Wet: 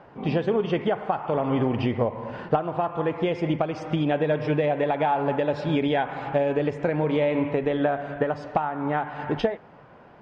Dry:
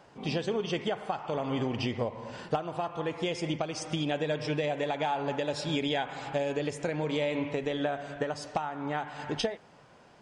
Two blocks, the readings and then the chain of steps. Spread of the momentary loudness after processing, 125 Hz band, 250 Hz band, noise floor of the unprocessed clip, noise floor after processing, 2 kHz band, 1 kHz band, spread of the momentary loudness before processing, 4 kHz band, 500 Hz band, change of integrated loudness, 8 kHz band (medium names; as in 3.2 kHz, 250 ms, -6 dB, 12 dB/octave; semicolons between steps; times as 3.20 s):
4 LU, +7.5 dB, +7.5 dB, -57 dBFS, -50 dBFS, +4.0 dB, +7.5 dB, 4 LU, -3.0 dB, +7.5 dB, +7.0 dB, under -10 dB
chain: low-pass 1.9 kHz 12 dB/octave; trim +7.5 dB